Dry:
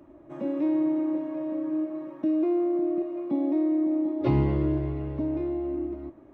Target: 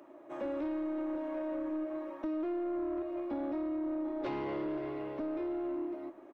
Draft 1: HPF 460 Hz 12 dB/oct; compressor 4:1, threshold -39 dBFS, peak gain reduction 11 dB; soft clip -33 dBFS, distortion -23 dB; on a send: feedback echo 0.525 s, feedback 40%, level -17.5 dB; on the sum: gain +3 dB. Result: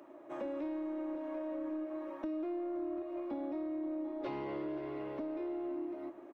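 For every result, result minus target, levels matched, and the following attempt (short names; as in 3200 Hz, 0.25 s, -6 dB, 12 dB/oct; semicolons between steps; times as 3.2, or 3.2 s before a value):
compressor: peak gain reduction +4.5 dB; echo-to-direct +6.5 dB
HPF 460 Hz 12 dB/oct; compressor 4:1, threshold -33 dBFS, peak gain reduction 6.5 dB; soft clip -33 dBFS, distortion -17 dB; on a send: feedback echo 0.525 s, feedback 40%, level -17.5 dB; on the sum: gain +3 dB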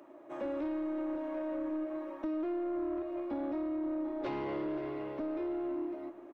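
echo-to-direct +6.5 dB
HPF 460 Hz 12 dB/oct; compressor 4:1, threshold -33 dBFS, peak gain reduction 6.5 dB; soft clip -33 dBFS, distortion -17 dB; on a send: feedback echo 0.525 s, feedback 40%, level -24 dB; on the sum: gain +3 dB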